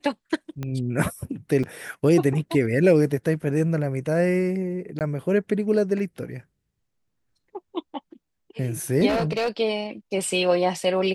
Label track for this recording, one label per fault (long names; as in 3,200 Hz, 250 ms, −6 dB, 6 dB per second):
0.630000	0.630000	click −18 dBFS
1.630000	1.640000	drop-out 5.8 ms
4.990000	5.010000	drop-out 18 ms
9.080000	9.490000	clipping −19.5 dBFS